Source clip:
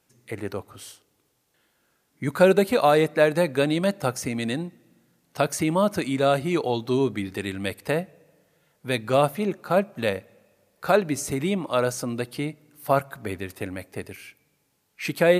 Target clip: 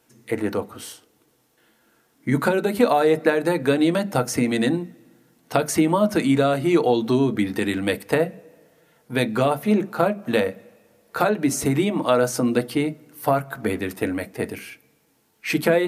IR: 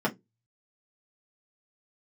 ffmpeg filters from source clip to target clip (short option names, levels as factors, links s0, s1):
-filter_complex "[0:a]atempo=0.97,acompressor=threshold=0.0794:ratio=6,asplit=2[s0][s1];[1:a]atrim=start_sample=2205,highshelf=f=7700:g=10[s2];[s1][s2]afir=irnorm=-1:irlink=0,volume=0.188[s3];[s0][s3]amix=inputs=2:normalize=0,volume=1.5"